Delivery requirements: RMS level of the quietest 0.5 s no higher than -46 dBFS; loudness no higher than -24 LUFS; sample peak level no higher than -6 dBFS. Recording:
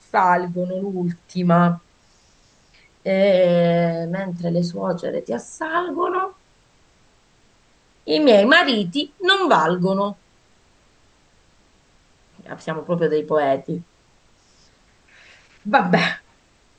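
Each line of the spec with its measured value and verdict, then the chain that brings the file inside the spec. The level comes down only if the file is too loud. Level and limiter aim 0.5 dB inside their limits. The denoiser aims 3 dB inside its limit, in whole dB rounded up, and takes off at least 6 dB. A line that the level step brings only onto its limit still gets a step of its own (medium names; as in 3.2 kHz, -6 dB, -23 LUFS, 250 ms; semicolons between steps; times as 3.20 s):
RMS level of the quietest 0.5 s -57 dBFS: pass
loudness -19.5 LUFS: fail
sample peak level -2.5 dBFS: fail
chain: trim -5 dB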